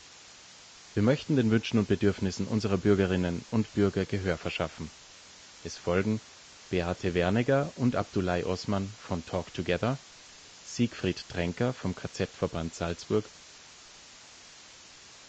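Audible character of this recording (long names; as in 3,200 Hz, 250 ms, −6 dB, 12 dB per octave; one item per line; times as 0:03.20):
a quantiser's noise floor 8 bits, dither triangular
Ogg Vorbis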